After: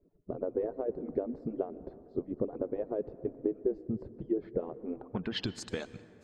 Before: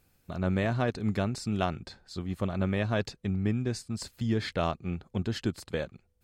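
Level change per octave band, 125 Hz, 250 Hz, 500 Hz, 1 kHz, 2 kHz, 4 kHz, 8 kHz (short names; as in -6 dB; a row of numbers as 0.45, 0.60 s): -15.0 dB, -5.5 dB, 0.0 dB, -11.5 dB, under -10 dB, -4.0 dB, n/a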